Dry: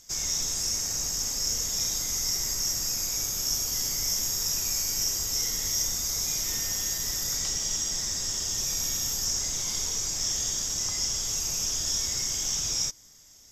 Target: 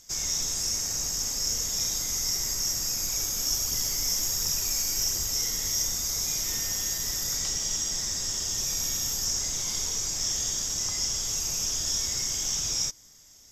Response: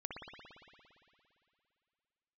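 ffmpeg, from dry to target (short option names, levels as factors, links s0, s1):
-filter_complex "[0:a]asettb=1/sr,asplit=3[s0][s1][s2];[s0]atrim=end=3.034[s3];[s1]atrim=start=3.03:end=5.31,asetpts=PTS-STARTPTS,afade=t=in:d=0.004:c=qsin,afade=t=out:st=2.276:d=0.004:c=qsin,aphaser=in_gain=1:out_gain=1:delay=4.5:decay=0.32:speed=1.4:type=triangular[s4];[s2]atrim=start=5.306[s5];[s3][s4]acrossfade=d=0.004:c1=hsin:c2=qsin[s6];[s6][s5]acrossfade=d=0.004:c1=qsin:c2=hsin"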